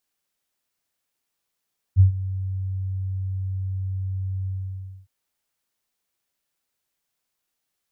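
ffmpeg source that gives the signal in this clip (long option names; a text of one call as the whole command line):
ffmpeg -f lavfi -i "aevalsrc='0.398*sin(2*PI*95*t)':duration=3.111:sample_rate=44100,afade=type=in:duration=0.042,afade=type=out:start_time=0.042:duration=0.114:silence=0.15,afade=type=out:start_time=2.51:duration=0.601" out.wav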